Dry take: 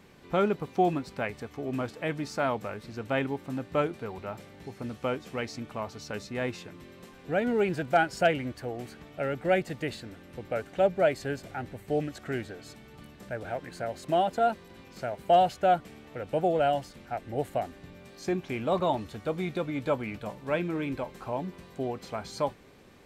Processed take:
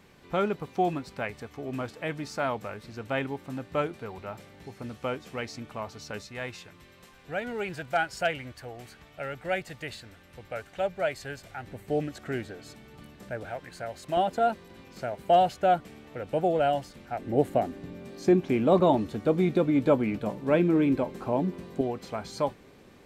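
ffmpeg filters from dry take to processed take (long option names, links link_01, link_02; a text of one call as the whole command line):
ffmpeg -i in.wav -af "asetnsamples=nb_out_samples=441:pad=0,asendcmd='6.21 equalizer g -10;11.67 equalizer g 0.5;13.45 equalizer g -6;14.17 equalizer g 1;17.19 equalizer g 10;21.81 equalizer g 2.5',equalizer=frequency=280:width_type=o:width=2.2:gain=-2.5" out.wav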